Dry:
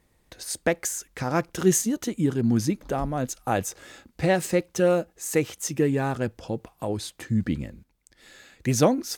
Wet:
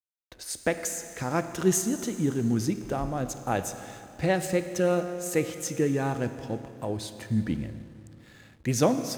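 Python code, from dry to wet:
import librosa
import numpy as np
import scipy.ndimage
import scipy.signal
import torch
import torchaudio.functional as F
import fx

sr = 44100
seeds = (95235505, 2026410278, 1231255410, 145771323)

y = fx.rev_schroeder(x, sr, rt60_s=2.8, comb_ms=25, drr_db=9.0)
y = fx.backlash(y, sr, play_db=-47.5)
y = F.gain(torch.from_numpy(y), -3.0).numpy()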